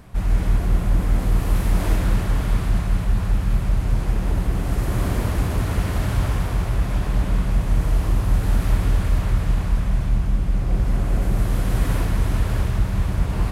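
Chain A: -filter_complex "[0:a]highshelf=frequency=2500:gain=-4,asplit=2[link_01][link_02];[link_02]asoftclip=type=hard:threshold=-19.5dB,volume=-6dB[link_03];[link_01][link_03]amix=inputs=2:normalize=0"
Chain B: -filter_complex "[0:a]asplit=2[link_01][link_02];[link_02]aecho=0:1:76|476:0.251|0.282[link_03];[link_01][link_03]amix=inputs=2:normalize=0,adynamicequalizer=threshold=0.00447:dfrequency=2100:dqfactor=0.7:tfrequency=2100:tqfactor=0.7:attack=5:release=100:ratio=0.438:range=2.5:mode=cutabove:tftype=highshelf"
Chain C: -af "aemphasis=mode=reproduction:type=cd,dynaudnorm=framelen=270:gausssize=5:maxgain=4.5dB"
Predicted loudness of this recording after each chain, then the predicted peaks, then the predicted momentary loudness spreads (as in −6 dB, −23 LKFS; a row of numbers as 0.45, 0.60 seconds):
−20.5, −21.0, −19.0 LKFS; −6.0, −5.0, −3.0 dBFS; 2, 3, 2 LU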